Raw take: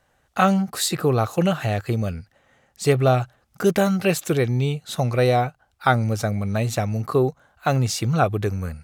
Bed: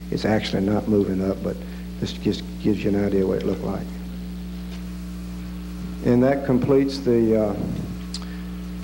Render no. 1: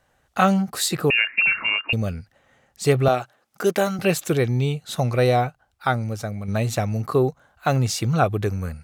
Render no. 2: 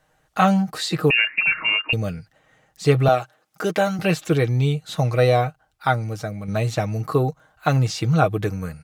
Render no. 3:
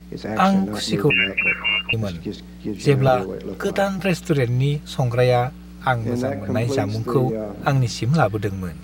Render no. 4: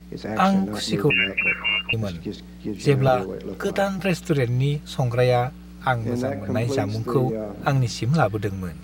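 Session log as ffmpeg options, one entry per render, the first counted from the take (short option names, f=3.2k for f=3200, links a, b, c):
-filter_complex "[0:a]asettb=1/sr,asplit=3[a][b][c];[a]atrim=end=1.104[d];[b]atrim=start=1.1:end=1.93,asetpts=PTS-STARTPTS,afade=t=in:d=0.004:c=qsin,afade=t=out:st=0.826:d=0.004:c=qsin,lowpass=f=2.5k:t=q:w=0.5098,lowpass=f=2.5k:t=q:w=0.6013,lowpass=f=2.5k:t=q:w=0.9,lowpass=f=2.5k:t=q:w=2.563,afreqshift=-2900[e];[c]atrim=start=1.926[f];[d][e]acrossfade=d=0.004:c1=hsin:c2=qsin[g];[g][f]acrossfade=d=0.004:c1=qsin:c2=hsin,asettb=1/sr,asplit=3[h][i][j];[h]atrim=end=3.084[k];[i]atrim=start=3.08:end=3.99,asetpts=PTS-STARTPTS,afade=t=in:d=0.004:c=qsin,afade=t=out:st=0.906:d=0.004:c=qsin,highpass=270[l];[j]atrim=start=3.986[m];[k][l]acrossfade=d=0.004:c1=hsin:c2=qsin[n];[n][m]acrossfade=d=0.004:c1=qsin:c2=hsin,asplit=2[o][p];[o]atrim=end=6.48,asetpts=PTS-STARTPTS,afade=t=out:st=5.45:d=1.03:c=qua:silence=0.501187[q];[p]atrim=start=6.48,asetpts=PTS-STARTPTS,afade=t=in:d=0.004:c=hsin:silence=0.501187[r];[q][r]concat=n=2:v=0:a=1"
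-filter_complex "[0:a]aecho=1:1:6.4:0.52,acrossover=split=5700[a][b];[b]acompressor=threshold=-42dB:ratio=4:attack=1:release=60[c];[a][c]amix=inputs=2:normalize=0"
-filter_complex "[1:a]volume=-7dB[a];[0:a][a]amix=inputs=2:normalize=0"
-af "volume=-2dB"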